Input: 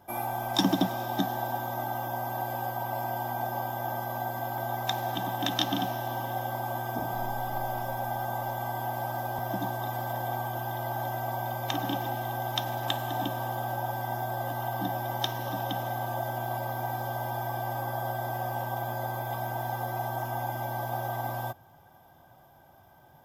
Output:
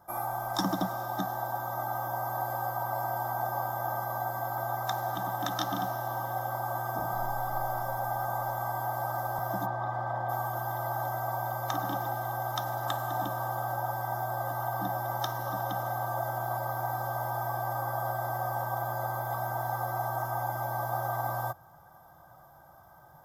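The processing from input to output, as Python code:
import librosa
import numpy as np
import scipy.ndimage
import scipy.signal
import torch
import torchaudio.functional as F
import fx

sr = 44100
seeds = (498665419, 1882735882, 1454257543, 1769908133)

y = fx.lowpass(x, sr, hz=2900.0, slope=12, at=(9.65, 10.28), fade=0.02)
y = fx.peak_eq(y, sr, hz=2900.0, db=-12.5, octaves=0.79)
y = fx.rider(y, sr, range_db=10, speed_s=2.0)
y = fx.graphic_eq_31(y, sr, hz=(100, 250, 400, 1250, 2500), db=(-6, -12, -8, 10, -6))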